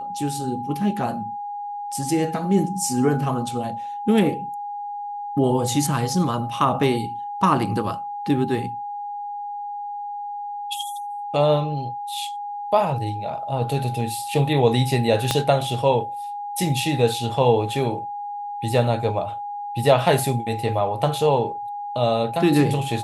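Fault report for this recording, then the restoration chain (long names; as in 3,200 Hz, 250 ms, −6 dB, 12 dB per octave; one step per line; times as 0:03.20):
whistle 820 Hz −28 dBFS
0:15.31: click −5 dBFS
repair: click removal
notch filter 820 Hz, Q 30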